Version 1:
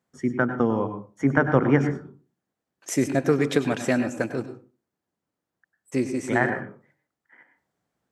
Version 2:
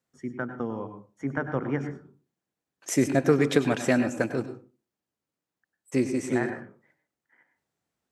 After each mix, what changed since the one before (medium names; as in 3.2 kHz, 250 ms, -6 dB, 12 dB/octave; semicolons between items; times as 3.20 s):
first voice -9.5 dB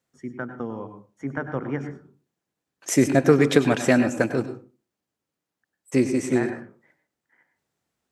second voice +4.5 dB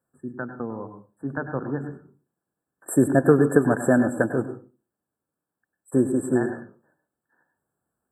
master: add brick-wall FIR band-stop 1.8–7.4 kHz